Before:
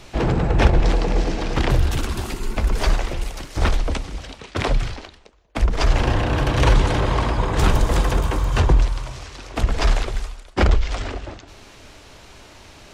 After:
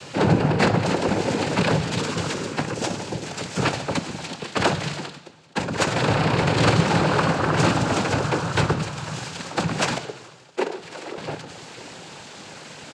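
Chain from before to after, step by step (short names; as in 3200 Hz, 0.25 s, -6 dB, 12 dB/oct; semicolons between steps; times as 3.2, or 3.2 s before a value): 2.73–3.23 bell 1500 Hz -9.5 dB 2.4 oct; 4.61–5.02 comb 2.8 ms, depth 68%; in parallel at -0.5 dB: compressor, threshold -25 dBFS, peak gain reduction 15.5 dB; on the sum: noise vocoder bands 8; 9.98–11.18 ladder high-pass 310 Hz, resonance 50%; echo 1.193 s -23.5 dB; on a send at -12.5 dB: reverb RT60 1.1 s, pre-delay 3 ms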